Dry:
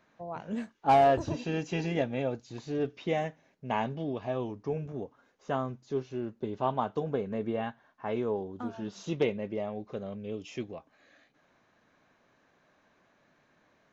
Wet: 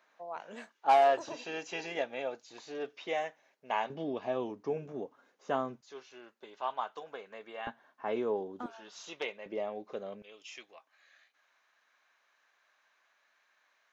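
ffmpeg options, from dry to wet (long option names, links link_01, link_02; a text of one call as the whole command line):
ffmpeg -i in.wav -af "asetnsamples=nb_out_samples=441:pad=0,asendcmd='3.9 highpass f 260;5.81 highpass f 1000;7.67 highpass f 280;8.66 highpass f 870;9.46 highpass f 360;10.22 highpass f 1200',highpass=600" out.wav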